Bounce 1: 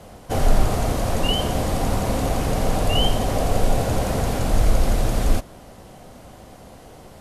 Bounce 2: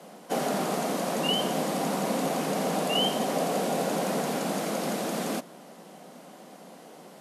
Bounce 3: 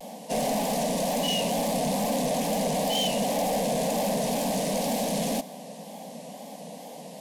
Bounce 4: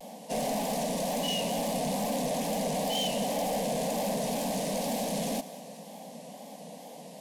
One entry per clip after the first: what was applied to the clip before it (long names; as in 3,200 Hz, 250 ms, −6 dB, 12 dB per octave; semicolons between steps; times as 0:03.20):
Butterworth high-pass 160 Hz 72 dB per octave; level −3 dB
soft clipping −30 dBFS, distortion −9 dB; tape wow and flutter 140 cents; phaser with its sweep stopped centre 360 Hz, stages 6; level +8.5 dB
feedback echo with a high-pass in the loop 196 ms, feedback 61%, level −17 dB; level −4 dB